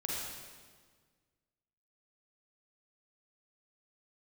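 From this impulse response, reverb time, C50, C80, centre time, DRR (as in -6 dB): 1.6 s, -2.5 dB, 0.0 dB, 0.108 s, -4.5 dB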